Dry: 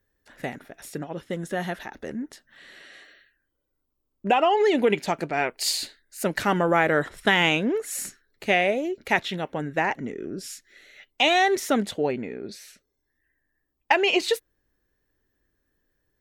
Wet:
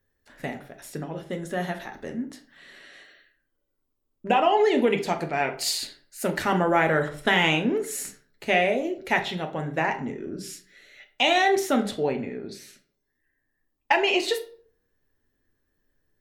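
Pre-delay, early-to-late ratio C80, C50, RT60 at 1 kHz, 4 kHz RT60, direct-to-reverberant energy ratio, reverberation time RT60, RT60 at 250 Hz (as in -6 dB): 7 ms, 16.5 dB, 12.0 dB, 0.45 s, 0.35 s, 4.5 dB, 0.50 s, 0.55 s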